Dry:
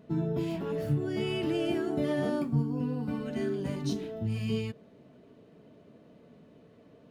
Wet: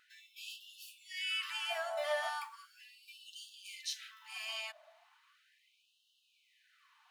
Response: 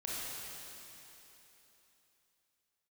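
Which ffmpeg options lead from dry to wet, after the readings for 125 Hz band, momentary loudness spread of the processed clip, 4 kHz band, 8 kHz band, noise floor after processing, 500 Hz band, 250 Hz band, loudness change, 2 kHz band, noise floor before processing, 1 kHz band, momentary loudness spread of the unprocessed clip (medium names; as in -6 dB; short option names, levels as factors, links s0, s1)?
under -40 dB, 19 LU, +4.0 dB, +4.0 dB, -75 dBFS, -11.0 dB, under -40 dB, -8.0 dB, +3.0 dB, -58 dBFS, 0.0 dB, 5 LU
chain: -af "bandreject=f=74.05:t=h:w=4,bandreject=f=148.1:t=h:w=4,bandreject=f=222.15:t=h:w=4,bandreject=f=296.2:t=h:w=4,bandreject=f=370.25:t=h:w=4,bandreject=f=444.3:t=h:w=4,bandreject=f=518.35:t=h:w=4,bandreject=f=592.4:t=h:w=4,bandreject=f=666.45:t=h:w=4,bandreject=f=740.5:t=h:w=4,bandreject=f=814.55:t=h:w=4,bandreject=f=888.6:t=h:w=4,bandreject=f=962.65:t=h:w=4,bandreject=f=1036.7:t=h:w=4,afftfilt=real='re*gte(b*sr/1024,560*pow(2700/560,0.5+0.5*sin(2*PI*0.37*pts/sr)))':imag='im*gte(b*sr/1024,560*pow(2700/560,0.5+0.5*sin(2*PI*0.37*pts/sr)))':win_size=1024:overlap=0.75,volume=1.58"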